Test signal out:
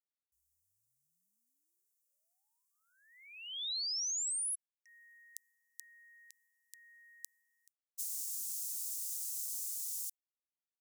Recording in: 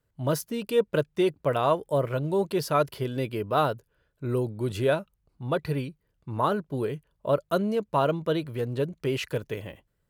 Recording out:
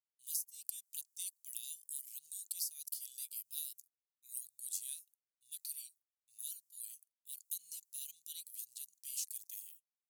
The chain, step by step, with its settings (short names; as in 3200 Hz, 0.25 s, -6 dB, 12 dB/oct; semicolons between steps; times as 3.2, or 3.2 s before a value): expander -38 dBFS; inverse Chebyshev high-pass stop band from 1200 Hz, stop band 80 dB; compressor 12:1, threshold -49 dBFS; gain +13 dB